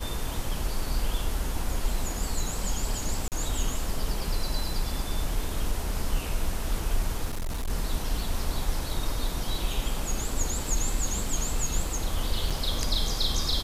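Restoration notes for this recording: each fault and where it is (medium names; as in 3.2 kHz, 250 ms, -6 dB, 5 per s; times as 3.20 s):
3.28–3.32 s: dropout 38 ms
7.25–7.70 s: clipped -27 dBFS
12.50–12.51 s: dropout 5.6 ms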